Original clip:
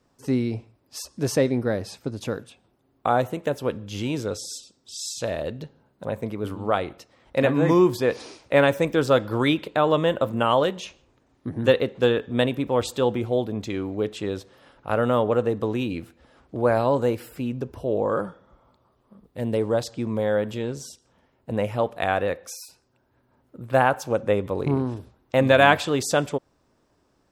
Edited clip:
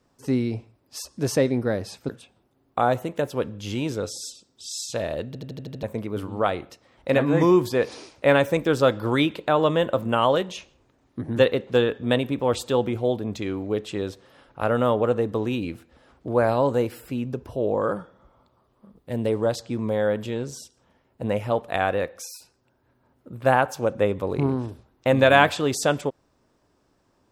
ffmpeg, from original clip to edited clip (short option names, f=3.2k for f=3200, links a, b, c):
-filter_complex "[0:a]asplit=9[a][b][c][d][e][f][g][h][i];[a]atrim=end=2.092[j];[b]atrim=start=2.368:end=5.632[k];[c]atrim=start=5.548:end=5.632[l];[d]atrim=start=5.548:end=5.632[m];[e]atrim=start=5.548:end=5.632[n];[f]atrim=start=5.548:end=5.632[o];[g]atrim=start=5.548:end=5.632[p];[h]atrim=start=5.548:end=5.632[q];[i]atrim=start=6.108[r];[j][k]acrossfade=d=0.004:c1=hsin:c2=hsin[s];[s][l]acrossfade=d=0.004:c1=hsin:c2=hsin[t];[t][m]acrossfade=d=0.004:c1=hsin:c2=hsin[u];[u][n]acrossfade=d=0.004:c1=hsin:c2=hsin[v];[v][o]acrossfade=d=0.004:c1=hsin:c2=hsin[w];[w][p]acrossfade=d=0.004:c1=hsin:c2=hsin[x];[x][q]acrossfade=d=0.004:c1=hsin:c2=hsin[y];[y][r]acrossfade=d=0.004:c1=hsin:c2=hsin"